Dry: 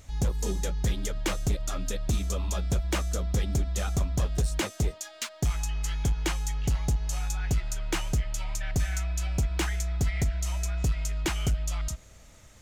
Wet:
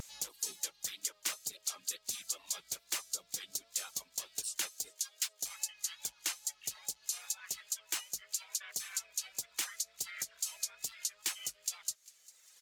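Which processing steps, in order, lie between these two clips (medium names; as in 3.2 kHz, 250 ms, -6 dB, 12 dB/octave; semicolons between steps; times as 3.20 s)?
high-pass 210 Hz 6 dB/octave; differentiator; reverb removal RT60 1.8 s; in parallel at +2.5 dB: compression, threshold -49 dBFS, peak gain reduction 16 dB; on the sum: harmony voices -7 st -10 dB, -3 st -12 dB; wow and flutter 43 cents; feedback echo behind a high-pass 400 ms, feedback 39%, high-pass 2.5 kHz, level -21 dB; MP3 128 kbps 48 kHz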